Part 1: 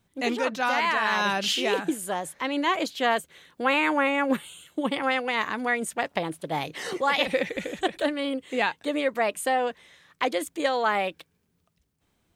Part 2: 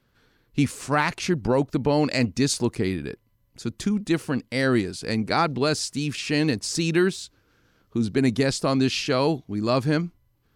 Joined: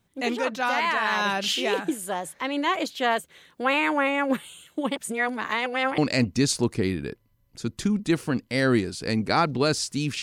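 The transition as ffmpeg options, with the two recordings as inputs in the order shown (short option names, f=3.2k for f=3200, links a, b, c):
-filter_complex "[0:a]apad=whole_dur=10.22,atrim=end=10.22,asplit=2[a][b];[a]atrim=end=4.962[c];[b]atrim=start=4.958:end=5.982,asetpts=PTS-STARTPTS,areverse[d];[1:a]atrim=start=1.988:end=6.23[e];[c][d]acrossfade=d=0.004:c1=hsin:c2=hsin[f];[f][e]acrossfade=d=0.004:c1=hsin:c2=hsin"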